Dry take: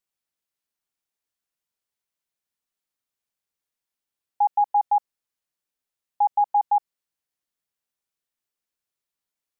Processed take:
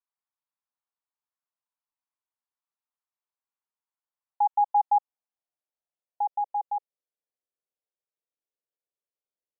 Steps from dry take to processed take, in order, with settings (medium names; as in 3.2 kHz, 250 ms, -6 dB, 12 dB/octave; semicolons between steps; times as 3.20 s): dynamic bell 590 Hz, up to -3 dB, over -32 dBFS, Q 1.6; band-pass sweep 1 kHz -> 500 Hz, 4.22–6.88 s